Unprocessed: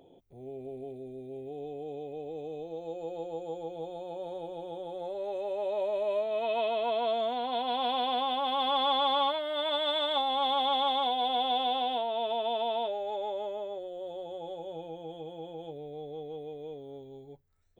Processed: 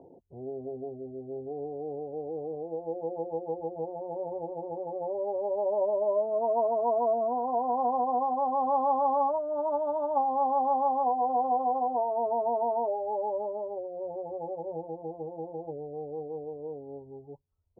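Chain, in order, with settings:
elliptic low-pass filter 990 Hz, stop band 50 dB
reverb reduction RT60 0.83 s
high-pass filter 48 Hz
level +6 dB

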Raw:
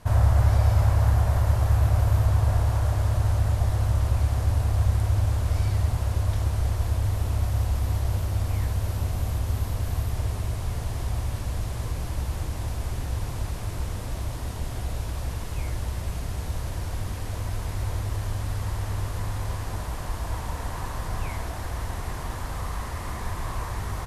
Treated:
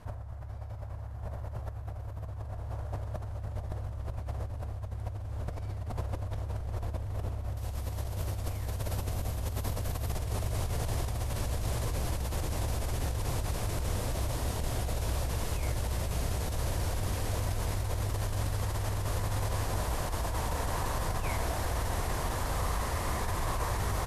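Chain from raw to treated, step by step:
high-shelf EQ 2,800 Hz −7.5 dB, from 0:07.57 +4.5 dB
compressor whose output falls as the input rises −29 dBFS, ratio −1
dynamic equaliser 530 Hz, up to +5 dB, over −48 dBFS, Q 1.2
level −4.5 dB

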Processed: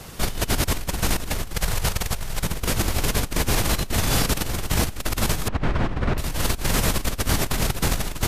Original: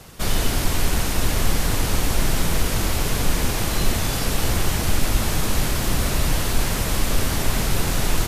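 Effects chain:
0:01.53–0:02.44: parametric band 280 Hz −13 dB 0.56 octaves
0:05.48–0:06.18: low-pass filter 1,900 Hz 12 dB per octave
compressor whose output falls as the input rises −22 dBFS, ratio −0.5

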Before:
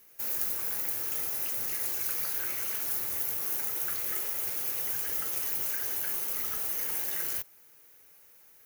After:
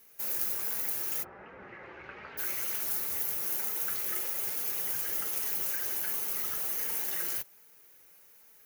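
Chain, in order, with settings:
0:01.22–0:02.37: low-pass filter 1,600 Hz → 2,700 Hz 24 dB per octave
flanger 1.3 Hz, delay 4.3 ms, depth 1.6 ms, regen −34%
level +3.5 dB

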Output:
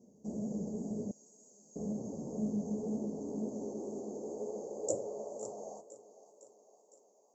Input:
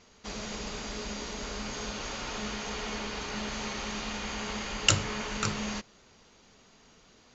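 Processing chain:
sub-octave generator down 2 octaves, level +1 dB
high-pass filter sweep 190 Hz → 920 Hz, 0:02.64–0:06.38
feedback echo with a high-pass in the loop 508 ms, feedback 59%, high-pass 180 Hz, level −16 dB
dynamic equaliser 4,400 Hz, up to −5 dB, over −48 dBFS, Q 0.71
inverse Chebyshev band-stop filter 1,600–3,300 Hz, stop band 70 dB
flanger 2 Hz, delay 7.3 ms, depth 7.1 ms, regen +45%
0:01.11–0:01.76: first difference
level +2 dB

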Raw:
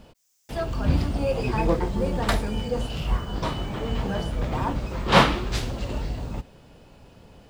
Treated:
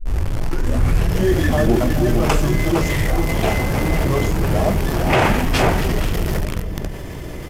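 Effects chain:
turntable start at the beginning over 1.25 s
high-shelf EQ 10,000 Hz +9.5 dB
slap from a distant wall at 79 metres, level −7 dB
in parallel at −6 dB: bit reduction 5 bits
on the sum: parametric band 5,600 Hz −4 dB 0.3 octaves
mains-hum notches 50/100/150/200/250/300/350/400/450 Hz
pitch shifter −6.5 semitones
boost into a limiter +7.5 dB
envelope flattener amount 50%
level −5.5 dB

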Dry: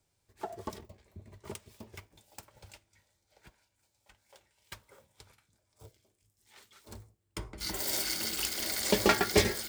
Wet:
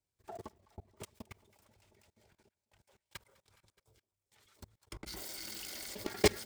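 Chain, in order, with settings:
echo with a time of its own for lows and highs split 780 Hz, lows 728 ms, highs 313 ms, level −14 dB
tempo change 1.5×
output level in coarse steps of 23 dB
level +1 dB

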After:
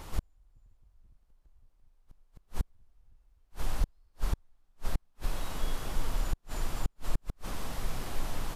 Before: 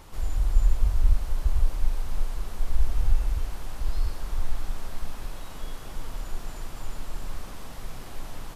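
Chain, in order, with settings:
wave folding −13 dBFS
gate with flip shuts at −20 dBFS, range −42 dB
level +3 dB

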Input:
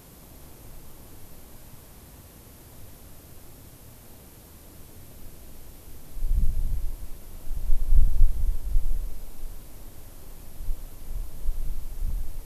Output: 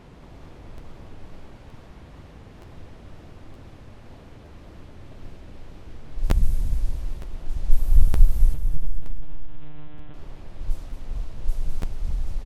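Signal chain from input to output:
low-pass that shuts in the quiet parts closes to 2,800 Hz, open at −14 dBFS
tape wow and flutter 110 cents
0:08.54–0:10.14: one-pitch LPC vocoder at 8 kHz 150 Hz
repeating echo 223 ms, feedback 50%, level −8 dB
regular buffer underruns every 0.92 s, samples 512, repeat, from 0:00.77
level +3.5 dB

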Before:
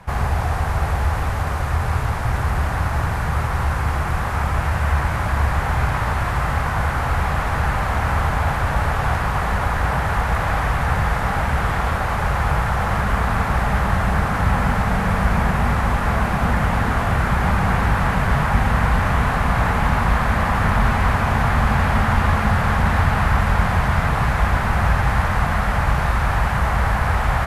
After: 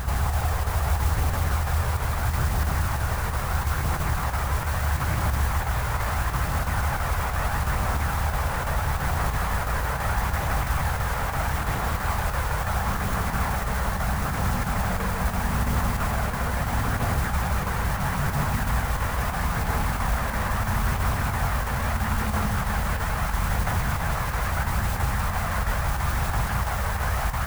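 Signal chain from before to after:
brickwall limiter −16 dBFS, peak gain reduction 11.5 dB
phase shifter 0.76 Hz, delay 2.2 ms, feedback 30%
noise that follows the level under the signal 15 dB
square-wave tremolo 3 Hz, depth 60%, duty 90%
backwards echo 157 ms −5 dB
level −3.5 dB

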